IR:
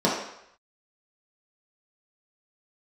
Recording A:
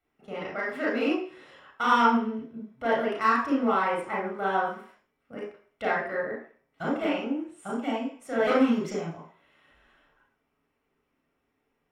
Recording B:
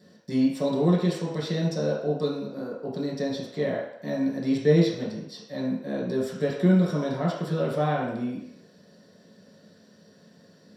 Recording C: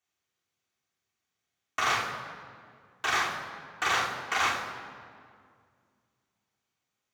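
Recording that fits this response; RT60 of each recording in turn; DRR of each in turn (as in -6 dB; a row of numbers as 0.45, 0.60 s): B; 0.50, 0.75, 2.1 s; -5.0, -6.5, -5.0 dB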